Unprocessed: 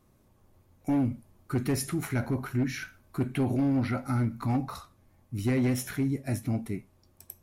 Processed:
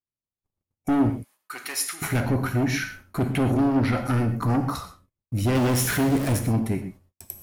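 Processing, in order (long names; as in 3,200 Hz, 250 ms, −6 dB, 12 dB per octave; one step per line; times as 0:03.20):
0:05.55–0:06.39: converter with a step at zero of −35 dBFS
noise gate −55 dBFS, range −47 dB
0:01.10–0:02.02: high-pass filter 1,400 Hz 12 dB per octave
0:04.26–0:04.74: flat-topped bell 2,900 Hz −10 dB 1 octave
sine wavefolder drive 5 dB, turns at −19 dBFS
reverb whose tail is shaped and stops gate 150 ms flat, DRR 8 dB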